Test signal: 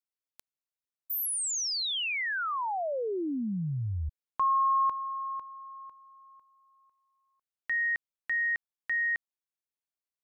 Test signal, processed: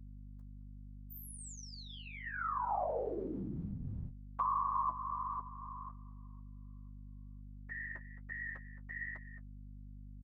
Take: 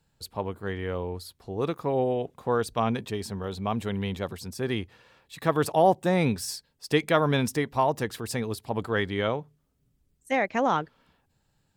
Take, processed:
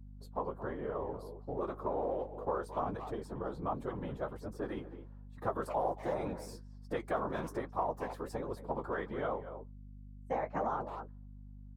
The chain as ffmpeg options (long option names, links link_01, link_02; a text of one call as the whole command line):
ffmpeg -i in.wav -filter_complex "[0:a]highshelf=frequency=1700:width_type=q:width=1.5:gain=-11,agate=range=-10dB:threshold=-48dB:ratio=16:release=201:detection=peak,equalizer=frequency=430:width=0.49:gain=9,asplit=2[link_01][link_02];[link_02]adelay=220,highpass=300,lowpass=3400,asoftclip=type=hard:threshold=-8.5dB,volume=-15dB[link_03];[link_01][link_03]amix=inputs=2:normalize=0,afftfilt=real='hypot(re,im)*cos(2*PI*random(0))':imag='hypot(re,im)*sin(2*PI*random(1))':win_size=512:overlap=0.75,flanger=delay=6.6:depth=9.4:regen=-28:speed=1.3:shape=triangular,acrossover=split=770|5000[link_04][link_05][link_06];[link_04]acompressor=threshold=-39dB:ratio=6[link_07];[link_05]acompressor=threshold=-37dB:ratio=4[link_08];[link_07][link_08][link_06]amix=inputs=3:normalize=0,aeval=exprs='val(0)+0.00316*(sin(2*PI*50*n/s)+sin(2*PI*2*50*n/s)/2+sin(2*PI*3*50*n/s)/3+sin(2*PI*4*50*n/s)/4+sin(2*PI*5*50*n/s)/5)':channel_layout=same,volume=1dB" out.wav